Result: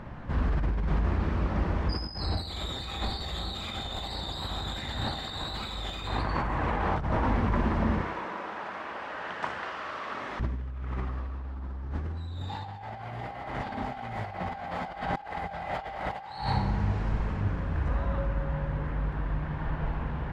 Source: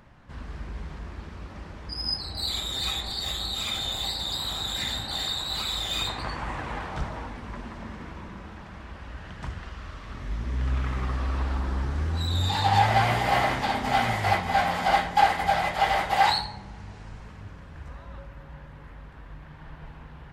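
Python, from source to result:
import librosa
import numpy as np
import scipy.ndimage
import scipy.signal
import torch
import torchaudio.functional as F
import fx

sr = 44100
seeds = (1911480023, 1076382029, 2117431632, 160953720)

y = fx.highpass(x, sr, hz=540.0, slope=12, at=(8.01, 10.4))
y = fx.echo_feedback(y, sr, ms=60, feedback_pct=52, wet_db=-10.5)
y = fx.over_compress(y, sr, threshold_db=-36.0, ratio=-1.0)
y = fx.lowpass(y, sr, hz=1300.0, slope=6)
y = y * librosa.db_to_amplitude(5.5)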